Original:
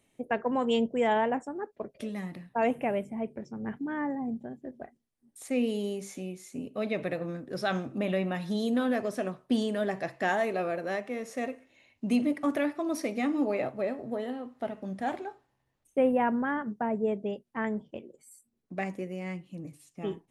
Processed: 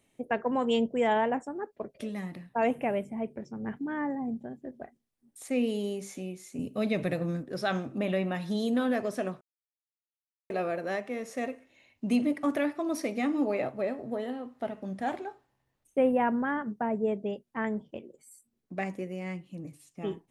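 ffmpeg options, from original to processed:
-filter_complex "[0:a]asettb=1/sr,asplit=3[s0][s1][s2];[s0]atrim=end=6.594[s3];[s1]atrim=start=6.59:end=7.43,asetpts=PTS-STARTPTS,afade=t=in:d=0.004:c=qsin,afade=t=out:st=0.836:d=0.004:c=qsin,bass=f=250:g=8,treble=f=4000:g=8[s4];[s2]atrim=start=7.426[s5];[s3][s4]acrossfade=d=0.004:c1=hsin:c2=qsin[s6];[s6][s5]acrossfade=d=0.004:c1=qsin:c2=hsin,asplit=3[s7][s8][s9];[s7]atrim=end=9.41,asetpts=PTS-STARTPTS,afade=t=out:st=9.406:d=0.004:c=hsin[s10];[s8]atrim=start=9.41:end=10.5,asetpts=PTS-STARTPTS,volume=0[s11];[s9]atrim=start=10.5,asetpts=PTS-STARTPTS,afade=t=in:d=0.004:c=hsin[s12];[s10][s11][s12]concat=n=3:v=0:a=1"

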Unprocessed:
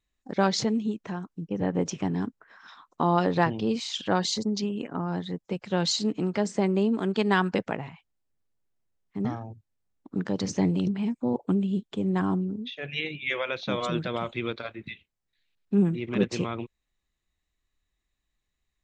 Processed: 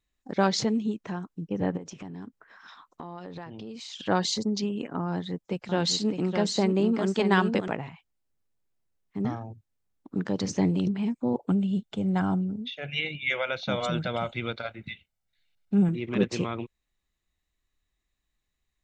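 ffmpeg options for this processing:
-filter_complex "[0:a]asplit=3[s0][s1][s2];[s0]afade=t=out:st=1.76:d=0.02[s3];[s1]acompressor=threshold=0.0126:ratio=5:attack=3.2:release=140:knee=1:detection=peak,afade=t=in:st=1.76:d=0.02,afade=t=out:st=3.99:d=0.02[s4];[s2]afade=t=in:st=3.99:d=0.02[s5];[s3][s4][s5]amix=inputs=3:normalize=0,asettb=1/sr,asplit=3[s6][s7][s8];[s6]atrim=end=5.084[s9];[s7]atrim=start=5.08:end=7.68,asetpts=PTS-STARTPTS,afade=t=in:d=0.004:c=qsin,afade=t=out:st=2.596:d=0.004:c=qsin,aecho=1:1:609:0.501,atrim=end_sample=114660[s10];[s8]atrim=start=7.676[s11];[s9][s10]acrossfade=d=0.004:c1=hsin:c2=qsin[s12];[s12][s11]acrossfade=d=0.004:c1=qsin:c2=hsin,asettb=1/sr,asplit=3[s13][s14][s15];[s13]atrim=end=11.504[s16];[s14]atrim=start=11.5:end=15.89,asetpts=PTS-STARTPTS,afade=t=in:d=0.004:c=qsin,afade=t=out:st=4.386:d=0.004:c=qsin,aecho=1:1:1.4:0.48,atrim=end_sample=193599[s17];[s15]atrim=start=15.886[s18];[s16][s17]acrossfade=d=0.004:c1=hsin:c2=qsin[s19];[s19][s18]acrossfade=d=0.004:c1=qsin:c2=hsin"

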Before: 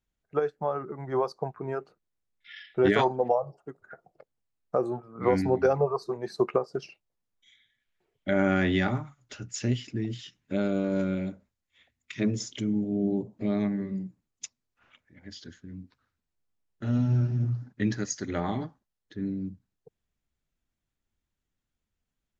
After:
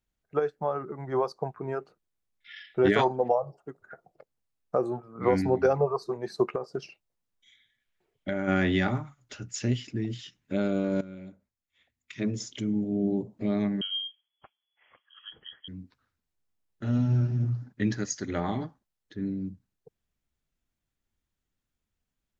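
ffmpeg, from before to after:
-filter_complex "[0:a]asplit=3[s0][s1][s2];[s0]afade=t=out:st=6.47:d=0.02[s3];[s1]acompressor=threshold=0.0562:ratio=6:attack=3.2:release=140:knee=1:detection=peak,afade=t=in:st=6.47:d=0.02,afade=t=out:st=8.47:d=0.02[s4];[s2]afade=t=in:st=8.47:d=0.02[s5];[s3][s4][s5]amix=inputs=3:normalize=0,asettb=1/sr,asplit=3[s6][s7][s8];[s6]atrim=end=13.814[s9];[s7]atrim=start=13.81:end=15.68,asetpts=PTS-STARTPTS,afade=t=in:d=0.004:c=qsin,afade=t=out:st=1.866:d=0.004:c=qsin,lowpass=f=2900:t=q:w=0.5098,lowpass=f=2900:t=q:w=0.6013,lowpass=f=2900:t=q:w=0.9,lowpass=f=2900:t=q:w=2.563,afreqshift=-3400[s10];[s8]atrim=start=15.676[s11];[s9][s10]acrossfade=d=0.004:c1=hsin:c2=qsin[s12];[s12][s11]acrossfade=d=0.004:c1=qsin:c2=hsin,asplit=2[s13][s14];[s13]atrim=end=11.01,asetpts=PTS-STARTPTS,afade=t=out:st=11.006:d=0.004:c=hsin:silence=0.158489[s15];[s14]atrim=start=11.01,asetpts=PTS-STARTPTS,afade=t=in:d=1.87:silence=0.158489[s16];[s15][s16]concat=n=2:v=0:a=1"

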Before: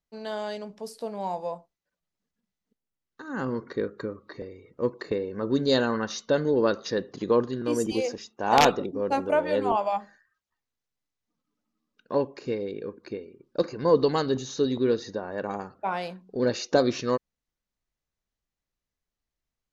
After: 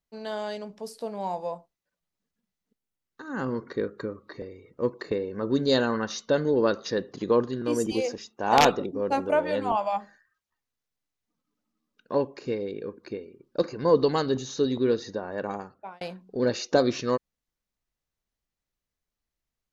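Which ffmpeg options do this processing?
-filter_complex "[0:a]asettb=1/sr,asplit=3[s0][s1][s2];[s0]atrim=end=9.514[s3];[s1]atrim=start=9.51:end=9.95,asetpts=PTS-STARTPTS,afade=t=in:d=0.004:c=qsin,afade=t=out:st=0.436:d=0.004:c=qsin,equalizer=f=400:w=2.9:g=-9[s4];[s2]atrim=start=9.946[s5];[s3][s4]acrossfade=d=0.004:c1=hsin:c2=qsin[s6];[s6][s5]acrossfade=d=0.004:c1=qsin:c2=hsin,asplit=2[s7][s8];[s7]atrim=end=16.01,asetpts=PTS-STARTPTS,afade=t=out:st=15.49:d=0.52[s9];[s8]atrim=start=16.01,asetpts=PTS-STARTPTS,afade=t=in:d=0.004:c=hsin[s10];[s9][s10]concat=n=2:v=0:a=1"

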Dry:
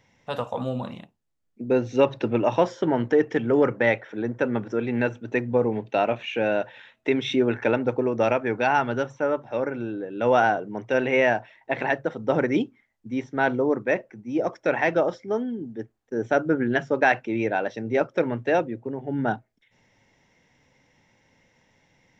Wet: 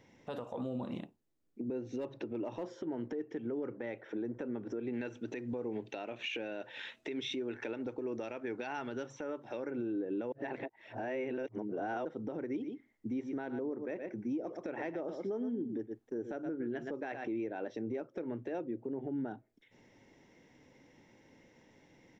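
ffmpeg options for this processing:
-filter_complex "[0:a]asettb=1/sr,asplit=3[s0][s1][s2];[s0]atrim=end=1.834[s3];[s1]atrim=start=1.83:end=3.01,asetpts=PTS-STARTPTS,afade=t=in:d=0.004:c=qsin,afade=t=out:st=1.176:d=0.004:c=qsin,volume=4.22,asoftclip=hard,volume=0.237[s4];[s2]atrim=start=3.006[s5];[s3][s4]acrossfade=d=0.004:c1=hsin:c2=qsin[s6];[s6][s5]acrossfade=d=0.004:c1=qsin:c2=hsin,asettb=1/sr,asplit=3[s7][s8][s9];[s7]atrim=end=4.934[s10];[s8]atrim=start=4.93:end=9.71,asetpts=PTS-STARTPTS,afade=t=in:d=0.004:c=qsin,afade=t=out:st=4.776:d=0.004:c=qsin,equalizer=f=5300:w=0.31:g=11.5[s11];[s9]atrim=start=9.706[s12];[s10][s11]acrossfade=d=0.004:c1=hsin:c2=qsin[s13];[s13][s12]acrossfade=d=0.004:c1=qsin:c2=hsin,asplit=3[s14][s15][s16];[s14]afade=t=out:st=12.58:d=0.02[s17];[s15]aecho=1:1:118:0.224,afade=t=in:st=12.58:d=0.02,afade=t=out:st=17.42:d=0.02[s18];[s16]afade=t=in:st=17.42:d=0.02[s19];[s17][s18][s19]amix=inputs=3:normalize=0,asplit=3[s20][s21][s22];[s20]atrim=end=10.322[s23];[s21]atrim=start=10.318:end=12.052,asetpts=PTS-STARTPTS,areverse[s24];[s22]atrim=start=12.048[s25];[s23][s24]acrossfade=d=0.004:c1=hsin:c2=hsin[s26];[s26][s25]acrossfade=d=0.004:c1=hsin:c2=hsin,equalizer=f=330:w=1.1:g=11.5,acompressor=threshold=0.0501:ratio=12,alimiter=level_in=1.26:limit=0.0631:level=0:latency=1:release=129,volume=0.794,volume=0.668"

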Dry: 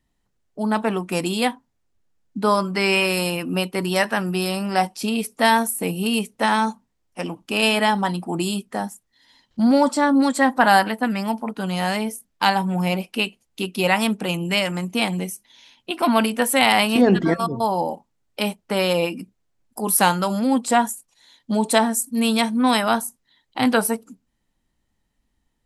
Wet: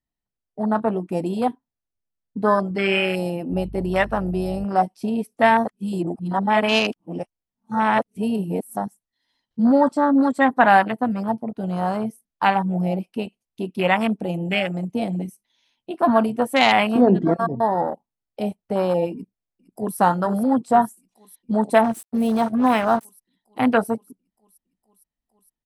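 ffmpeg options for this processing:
-filter_complex "[0:a]asettb=1/sr,asplit=3[s0][s1][s2];[s0]atrim=end=3.524[s3];[s1]atrim=start=3.52:end=4.65,asetpts=PTS-STARTPTS,afade=t=in:d=0.004:c=qsin,afade=t=out:st=1.126:d=0.004:c=qsin,aeval=exprs='val(0)+0.02*(sin(2*PI*50*n/s)+sin(2*PI*2*50*n/s)/2+sin(2*PI*3*50*n/s)/3+sin(2*PI*4*50*n/s)/4+sin(2*PI*5*50*n/s)/5)':c=same[s4];[s2]atrim=start=4.646[s5];[s3][s4]acrossfade=d=0.004:c1=hsin:c2=qsin[s6];[s6][s5]acrossfade=d=0.004:c1=qsin:c2=hsin,asplit=2[s7][s8];[s8]afade=t=in:st=19.13:d=0.01,afade=t=out:st=19.97:d=0.01,aecho=0:1:460|920|1380|1840|2300|2760|3220|3680|4140|4600|5060|5520:0.316228|0.268794|0.228475|0.194203|0.165073|0.140312|0.119265|0.101375|0.0861691|0.0732437|0.0622572|0.0529186[s9];[s7][s9]amix=inputs=2:normalize=0,asettb=1/sr,asplit=3[s10][s11][s12];[s10]atrim=end=21.844[s13];[s11]atrim=start=21.84:end=23.05,asetpts=PTS-STARTPTS,afade=t=in:d=0.004:c=qsin,afade=t=out:st=1.206:d=0.004:c=qsin,acrusher=bits=3:mix=0:aa=0.5[s14];[s12]atrim=start=23.046[s15];[s13][s14]acrossfade=d=0.004:c1=hsin:c2=qsin[s16];[s16][s15]acrossfade=d=0.004:c1=qsin:c2=hsin,asplit=3[s17][s18][s19];[s17]atrim=end=5.652[s20];[s18]atrim=start=5.648:end=8.772,asetpts=PTS-STARTPTS,areverse[s21];[s19]atrim=start=8.768[s22];[s20][s21]acrossfade=d=0.004:c1=hsin:c2=hsin[s23];[s23][s22]acrossfade=d=0.004:c1=hsin:c2=hsin,bandreject=f=7000:w=12,afwtdn=0.0794,equalizer=f=680:t=o:w=0.27:g=4"

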